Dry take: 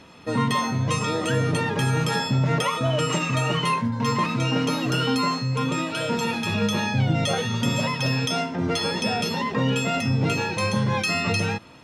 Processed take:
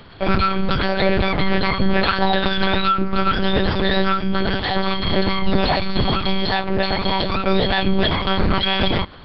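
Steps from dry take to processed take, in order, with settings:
one-pitch LPC vocoder at 8 kHz 150 Hz
reversed playback
upward compression, threshold −43 dBFS
reversed playback
speed change +28%
level +6 dB

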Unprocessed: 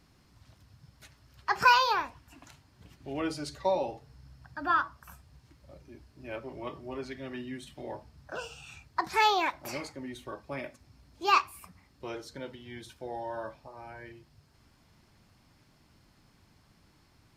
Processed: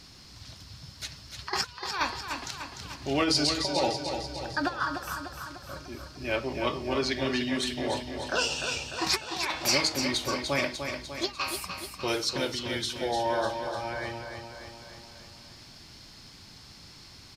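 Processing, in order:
parametric band 4,700 Hz +13 dB 1.5 octaves
hum removal 157 Hz, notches 32
compressor whose output falls as the input rises −31 dBFS, ratio −0.5
on a send: repeating echo 298 ms, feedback 58%, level −7 dB
on the sum: level +3.5 dB

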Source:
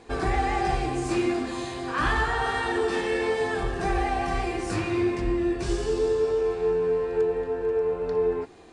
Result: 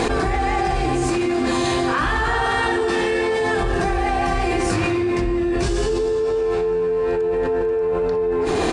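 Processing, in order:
single-tap delay 157 ms −22 dB
envelope flattener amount 100%

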